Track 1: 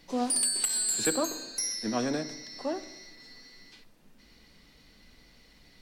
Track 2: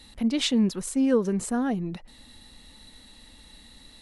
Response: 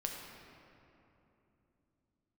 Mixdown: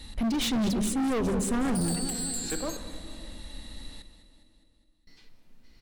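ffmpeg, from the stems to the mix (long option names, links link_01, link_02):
-filter_complex "[0:a]adelay=1450,volume=-9dB,asplit=3[link_01][link_02][link_03];[link_01]atrim=end=2.77,asetpts=PTS-STARTPTS,afade=type=out:start_time=2.766:duration=0.004:curve=hsin[link_04];[link_02]atrim=start=2.77:end=5.07,asetpts=PTS-STARTPTS,volume=0[link_05];[link_03]atrim=start=5.07,asetpts=PTS-STARTPTS,afade=type=in:duration=0.004:curve=hsin[link_06];[link_04][link_05][link_06]concat=n=3:v=0:a=1,asplit=3[link_07][link_08][link_09];[link_08]volume=-4dB[link_10];[link_09]volume=-18dB[link_11];[1:a]volume=1.5dB,asplit=3[link_12][link_13][link_14];[link_13]volume=-13.5dB[link_15];[link_14]volume=-11dB[link_16];[2:a]atrim=start_sample=2205[link_17];[link_10][link_15]amix=inputs=2:normalize=0[link_18];[link_18][link_17]afir=irnorm=-1:irlink=0[link_19];[link_11][link_16]amix=inputs=2:normalize=0,aecho=0:1:205|410|615|820|1025|1230|1435|1640|1845:1|0.57|0.325|0.185|0.106|0.0602|0.0343|0.0195|0.0111[link_20];[link_07][link_12][link_19][link_20]amix=inputs=4:normalize=0,bandreject=frequency=50:width_type=h:width=6,bandreject=frequency=100:width_type=h:width=6,bandreject=frequency=150:width_type=h:width=6,bandreject=frequency=200:width_type=h:width=6,volume=27dB,asoftclip=hard,volume=-27dB,lowshelf=frequency=120:gain=11"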